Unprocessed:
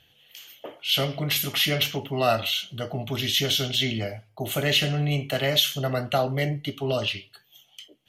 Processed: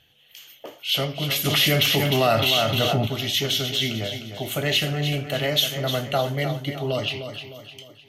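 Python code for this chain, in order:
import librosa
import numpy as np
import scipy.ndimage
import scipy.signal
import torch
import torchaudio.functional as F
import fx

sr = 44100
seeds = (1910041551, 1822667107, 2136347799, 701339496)

p1 = x + fx.echo_feedback(x, sr, ms=305, feedback_pct=43, wet_db=-9.0, dry=0)
y = fx.env_flatten(p1, sr, amount_pct=70, at=(1.44, 3.06), fade=0.02)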